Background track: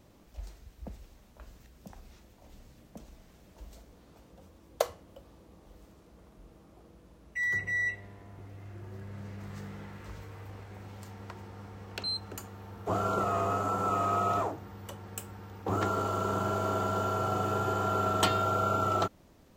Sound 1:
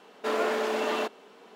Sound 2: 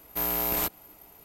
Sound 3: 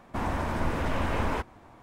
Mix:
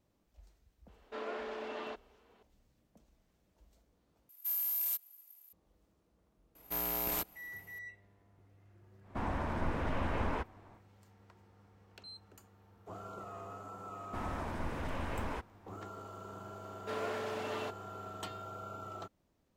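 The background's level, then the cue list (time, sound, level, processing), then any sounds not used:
background track -17 dB
0.88 add 1 -13.5 dB + LPF 4400 Hz
4.29 replace with 2 -9 dB + pre-emphasis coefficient 0.97
6.55 add 2 -7.5 dB
9.01 add 3 -6 dB, fades 0.10 s + high shelf 5400 Hz -11 dB
13.99 add 3 -10 dB
16.63 add 1 -11 dB

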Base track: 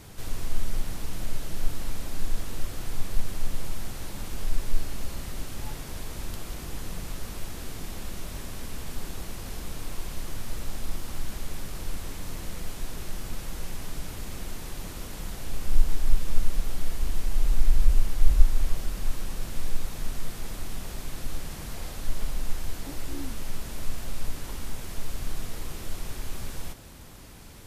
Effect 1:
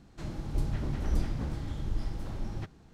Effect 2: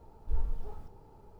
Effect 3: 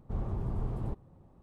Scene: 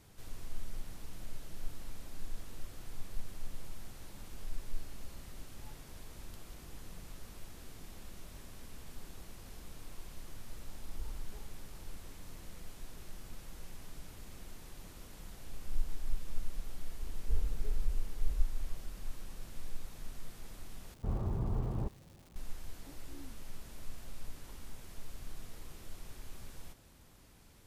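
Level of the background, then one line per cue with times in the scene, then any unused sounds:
base track -13.5 dB
10.68 add 2 -11 dB
16.99 add 2 -1.5 dB + band shelf 910 Hz -13 dB 1 oct
20.94 replace with 3 -0.5 dB + crackle 510/s -50 dBFS
not used: 1

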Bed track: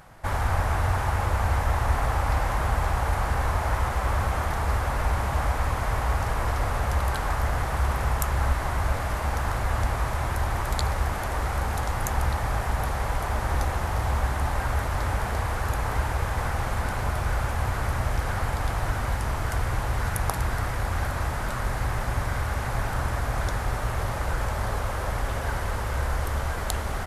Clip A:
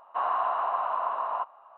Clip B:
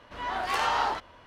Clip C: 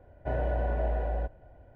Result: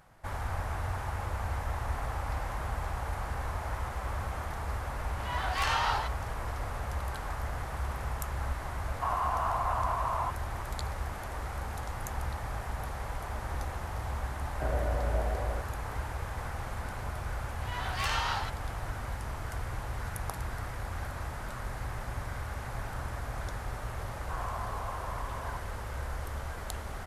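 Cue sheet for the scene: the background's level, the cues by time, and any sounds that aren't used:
bed track -10 dB
5.08 add B + HPF 1100 Hz 6 dB/oct
8.87 add A -0.5 dB + limiter -22.5 dBFS
14.35 add C -2.5 dB
17.5 add B -7.5 dB + tilt shelf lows -8 dB, about 940 Hz
24.14 add A -12.5 dB

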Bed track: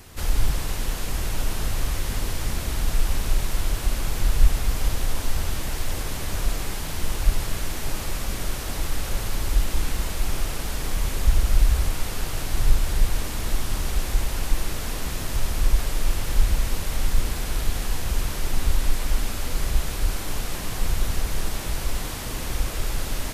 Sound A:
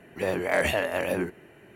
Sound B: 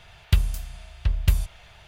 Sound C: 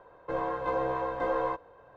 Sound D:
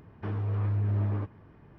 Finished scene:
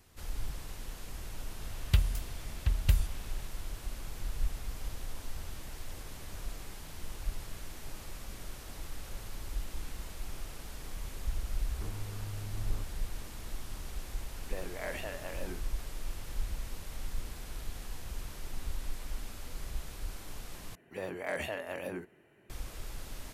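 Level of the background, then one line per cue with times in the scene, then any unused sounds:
bed track -16 dB
1.61 add B -6 dB
11.58 add D -6.5 dB + limiter -30.5 dBFS
14.3 add A -15 dB
20.75 replace with A -11.5 dB
not used: C

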